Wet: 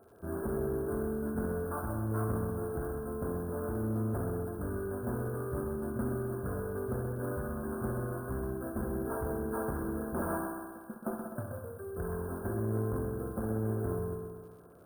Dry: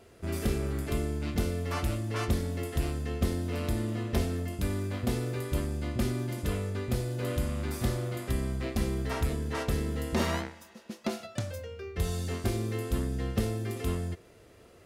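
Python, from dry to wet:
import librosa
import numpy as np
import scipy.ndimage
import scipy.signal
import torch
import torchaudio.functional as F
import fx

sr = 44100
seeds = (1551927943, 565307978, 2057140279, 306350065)

p1 = fx.highpass(x, sr, hz=140.0, slope=6)
p2 = fx.sample_hold(p1, sr, seeds[0], rate_hz=5500.0, jitter_pct=0)
p3 = np.clip(10.0 ** (25.5 / 20.0) * p2, -1.0, 1.0) / 10.0 ** (25.5 / 20.0)
p4 = fx.brickwall_bandstop(p3, sr, low_hz=1700.0, high_hz=8600.0)
p5 = p4 + fx.echo_heads(p4, sr, ms=64, heads='first and second', feedback_pct=65, wet_db=-9, dry=0)
p6 = fx.dmg_crackle(p5, sr, seeds[1], per_s=88.0, level_db=-56.0)
p7 = fx.transformer_sat(p6, sr, knee_hz=200.0)
y = F.gain(torch.from_numpy(p7), -2.0).numpy()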